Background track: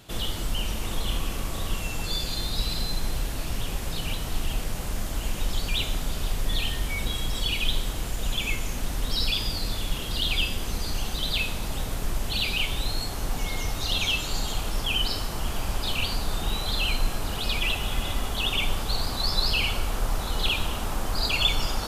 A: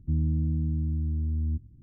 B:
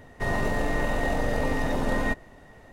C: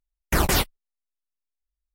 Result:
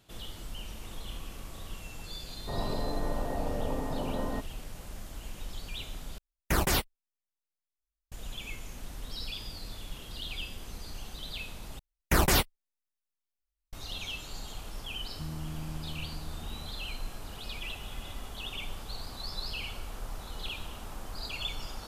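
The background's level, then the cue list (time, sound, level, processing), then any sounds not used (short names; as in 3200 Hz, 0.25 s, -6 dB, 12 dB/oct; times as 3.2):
background track -13 dB
2.27 add B -6.5 dB + LPF 1300 Hz 24 dB/oct
6.18 replace with C -6 dB
11.79 replace with C -3 dB
15.11 add A -12.5 dB + comb 5.9 ms, depth 57%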